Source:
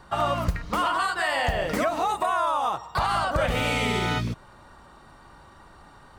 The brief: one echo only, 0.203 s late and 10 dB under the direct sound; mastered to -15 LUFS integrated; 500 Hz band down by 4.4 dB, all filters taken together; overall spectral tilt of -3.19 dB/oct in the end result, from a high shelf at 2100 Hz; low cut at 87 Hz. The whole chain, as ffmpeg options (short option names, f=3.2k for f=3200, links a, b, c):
-af "highpass=87,equalizer=f=500:t=o:g=-5.5,highshelf=f=2.1k:g=-4.5,aecho=1:1:203:0.316,volume=12.5dB"